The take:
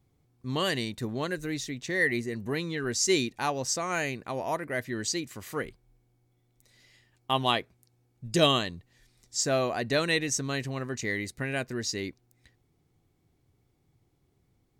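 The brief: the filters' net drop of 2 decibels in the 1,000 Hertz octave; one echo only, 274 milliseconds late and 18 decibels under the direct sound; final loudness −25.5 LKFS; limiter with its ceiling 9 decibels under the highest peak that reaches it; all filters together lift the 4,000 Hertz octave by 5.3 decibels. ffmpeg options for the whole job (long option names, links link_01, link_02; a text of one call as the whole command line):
ffmpeg -i in.wav -af "equalizer=frequency=1000:width_type=o:gain=-3,equalizer=frequency=4000:width_type=o:gain=7,alimiter=limit=-14.5dB:level=0:latency=1,aecho=1:1:274:0.126,volume=3.5dB" out.wav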